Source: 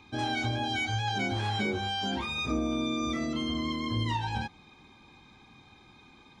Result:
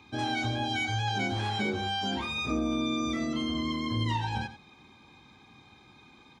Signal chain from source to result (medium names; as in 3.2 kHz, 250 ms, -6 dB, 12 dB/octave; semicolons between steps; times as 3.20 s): high-pass 61 Hz; delay 90 ms -13 dB